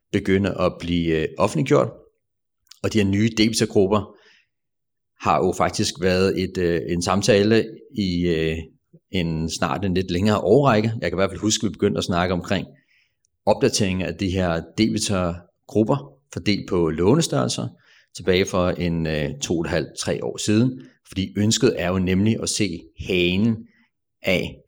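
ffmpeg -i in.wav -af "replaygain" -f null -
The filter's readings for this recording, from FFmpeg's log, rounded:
track_gain = +1.5 dB
track_peak = 0.400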